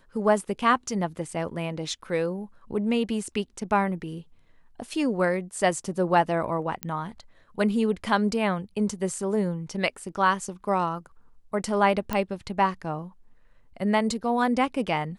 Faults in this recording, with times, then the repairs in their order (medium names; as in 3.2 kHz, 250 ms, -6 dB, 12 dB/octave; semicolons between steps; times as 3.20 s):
6.83 s: pop -13 dBFS
12.13 s: pop -13 dBFS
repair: de-click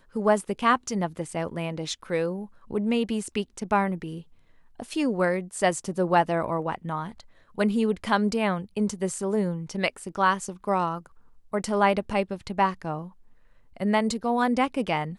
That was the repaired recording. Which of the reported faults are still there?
nothing left